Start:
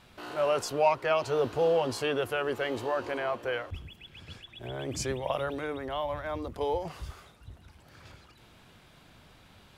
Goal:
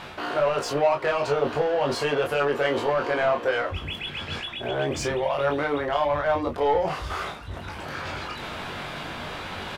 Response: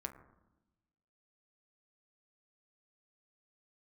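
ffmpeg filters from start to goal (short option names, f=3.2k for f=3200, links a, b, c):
-filter_complex "[0:a]areverse,acompressor=mode=upward:threshold=-32dB:ratio=2.5,areverse,alimiter=limit=-23dB:level=0:latency=1:release=115,asplit=2[a][b];[b]highpass=f=720:p=1,volume=13dB,asoftclip=type=tanh:threshold=-23dB[c];[a][c]amix=inputs=2:normalize=0,lowpass=f=1.7k:p=1,volume=-6dB,aecho=1:1:21|34:0.631|0.422,volume=6.5dB"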